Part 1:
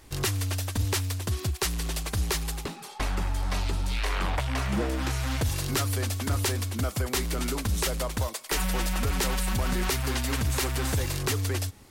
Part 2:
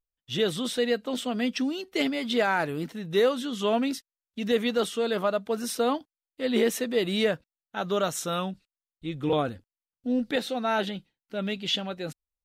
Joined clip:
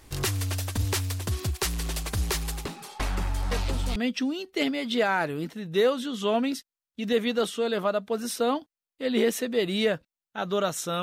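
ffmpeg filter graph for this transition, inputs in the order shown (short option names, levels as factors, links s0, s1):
-filter_complex "[1:a]asplit=2[s0][s1];[0:a]apad=whole_dur=11.02,atrim=end=11.02,atrim=end=3.962[s2];[s1]atrim=start=1.348:end=8.41[s3];[s0]atrim=start=0.9:end=1.35,asetpts=PTS-STARTPTS,volume=0.376,afade=t=in:d=0.004:c=hsin,afade=t=out:st=0.446:d=0.004:c=hsin,adelay=3510[s4];[s2][s3]acrossfade=d=0.004:c1=hsin:c2=hsin[s5];[s5][s4]amix=inputs=2:normalize=0"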